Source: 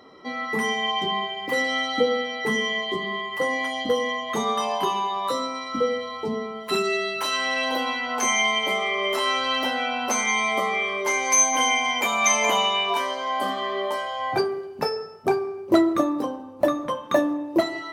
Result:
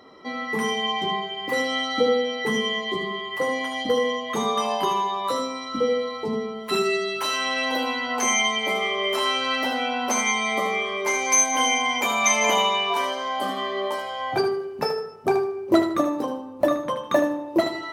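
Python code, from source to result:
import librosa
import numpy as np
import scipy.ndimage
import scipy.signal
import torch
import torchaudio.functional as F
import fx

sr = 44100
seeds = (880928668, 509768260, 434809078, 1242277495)

y = fx.echo_feedback(x, sr, ms=77, feedback_pct=26, wet_db=-8.5)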